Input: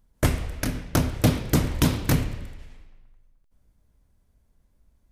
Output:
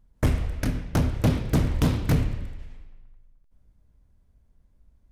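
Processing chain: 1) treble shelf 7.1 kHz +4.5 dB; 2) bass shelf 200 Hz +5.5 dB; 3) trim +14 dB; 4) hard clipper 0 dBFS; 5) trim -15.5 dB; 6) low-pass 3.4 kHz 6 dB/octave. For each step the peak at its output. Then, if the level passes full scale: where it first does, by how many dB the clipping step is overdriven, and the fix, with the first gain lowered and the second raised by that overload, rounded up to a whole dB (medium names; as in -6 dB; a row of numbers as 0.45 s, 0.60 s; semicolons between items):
-8.5 dBFS, -6.0 dBFS, +8.0 dBFS, 0.0 dBFS, -15.5 dBFS, -15.5 dBFS; step 3, 8.0 dB; step 3 +6 dB, step 5 -7.5 dB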